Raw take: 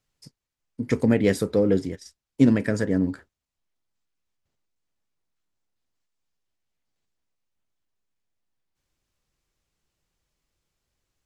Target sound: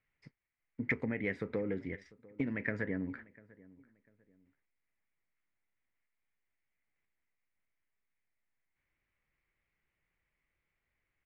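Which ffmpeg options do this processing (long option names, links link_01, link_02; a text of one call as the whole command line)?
ffmpeg -i in.wav -filter_complex "[0:a]acompressor=threshold=-25dB:ratio=12,lowpass=frequency=2100:width_type=q:width=5.3,asplit=2[link_01][link_02];[link_02]adelay=696,lowpass=frequency=1500:poles=1,volume=-22dB,asplit=2[link_03][link_04];[link_04]adelay=696,lowpass=frequency=1500:poles=1,volume=0.32[link_05];[link_01][link_03][link_05]amix=inputs=3:normalize=0,volume=-7dB" out.wav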